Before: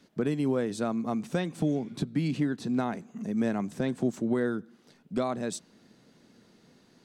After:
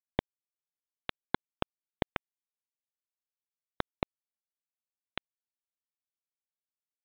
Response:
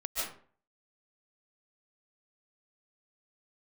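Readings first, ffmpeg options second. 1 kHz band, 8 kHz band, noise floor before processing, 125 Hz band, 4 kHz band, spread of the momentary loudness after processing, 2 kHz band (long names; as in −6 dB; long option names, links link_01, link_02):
−4.5 dB, below −35 dB, −62 dBFS, −13.0 dB, −0.5 dB, 7 LU, −3.0 dB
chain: -af "acompressor=threshold=-34dB:ratio=2,aresample=8000,acrusher=bits=3:mix=0:aa=0.000001,aresample=44100,volume=5.5dB"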